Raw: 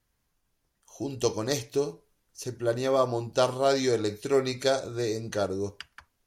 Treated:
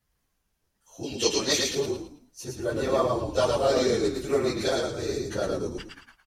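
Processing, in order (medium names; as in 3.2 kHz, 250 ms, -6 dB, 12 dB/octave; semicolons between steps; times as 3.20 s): phase randomisation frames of 50 ms; 1.03–1.75 s: frequency weighting D; on a send: frequency-shifting echo 109 ms, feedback 32%, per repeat -41 Hz, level -3 dB; on the sum: trim -1 dB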